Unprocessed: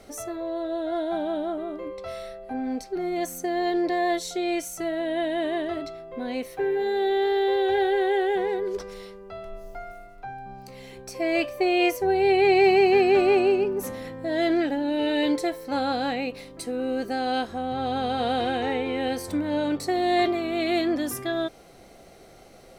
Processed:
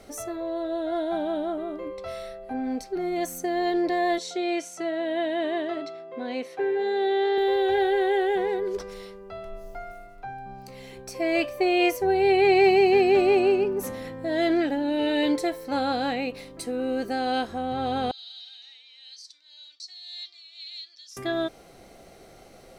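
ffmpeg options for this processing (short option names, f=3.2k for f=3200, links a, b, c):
-filter_complex "[0:a]asettb=1/sr,asplit=3[a][b][c];[a]atrim=end=4.184[d];[b]atrim=start=4.18:end=7.38,asetpts=PTS-STARTPTS,afade=t=in:d=0.004:c=qsin,afade=t=out:st=3.196:d=0.004:c=qsin,highpass=230,lowpass=6.5k[e];[c]atrim=start=7.376[f];[d][e]acrossfade=d=0.004:c1=hsin:c2=qsin[g];[g][f]acrossfade=d=0.004:c1=qsin:c2=hsin,asettb=1/sr,asplit=3[h][i][j];[h]atrim=end=12.694[k];[i]atrim=start=12.69:end=13.43,asetpts=PTS-STARTPTS,afade=t=in:d=0.004:c=qsin,afade=t=out:st=0.736:d=0.004:c=qsin,equalizer=f=1.4k:t=o:w=0.77:g=-5.5[l];[j]atrim=start=13.426[m];[k][l]acrossfade=d=0.004:c1=hsin:c2=qsin[n];[n][m]acrossfade=d=0.004:c1=qsin:c2=hsin,asettb=1/sr,asplit=3[o][p][q];[o]atrim=end=18.114[r];[p]atrim=start=18.11:end=21.17,asetpts=PTS-STARTPTS,afade=t=in:d=0.004:c=qsin,afade=t=out:st=3.056:d=0.004:c=qsin,asuperpass=centerf=4800:order=4:qfactor=2.2[s];[q]atrim=start=21.166[t];[r][s]acrossfade=d=0.004:c1=hsin:c2=qsin[u];[u][t]acrossfade=d=0.004:c1=qsin:c2=hsin"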